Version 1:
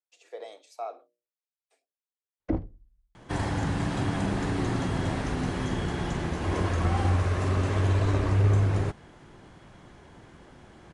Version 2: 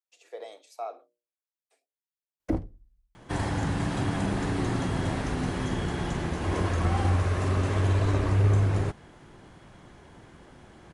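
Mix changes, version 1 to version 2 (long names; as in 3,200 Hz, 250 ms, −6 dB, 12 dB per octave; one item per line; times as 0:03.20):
first sound: remove high-frequency loss of the air 200 metres
master: remove low-pass filter 10,000 Hz 12 dB per octave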